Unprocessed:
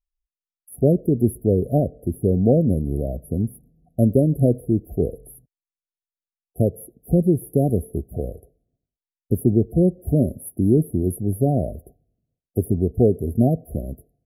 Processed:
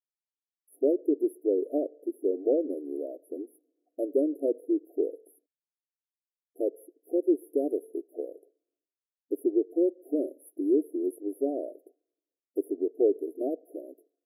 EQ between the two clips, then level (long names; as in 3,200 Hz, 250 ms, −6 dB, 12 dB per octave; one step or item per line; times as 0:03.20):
linear-phase brick-wall high-pass 280 Hz
inverse Chebyshev band-stop filter 970–2,000 Hz, stop band 40 dB
tilt shelving filter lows +9 dB, about 690 Hz
−8.5 dB